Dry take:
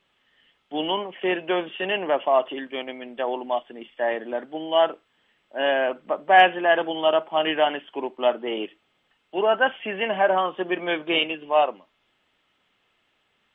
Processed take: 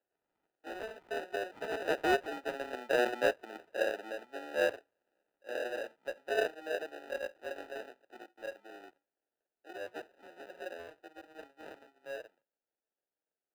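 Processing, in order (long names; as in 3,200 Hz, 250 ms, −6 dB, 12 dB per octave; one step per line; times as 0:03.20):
source passing by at 0:02.92, 37 m/s, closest 22 metres
sample-rate reduction 1,100 Hz, jitter 0%
three-way crossover with the lows and the highs turned down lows −21 dB, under 360 Hz, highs −15 dB, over 3,200 Hz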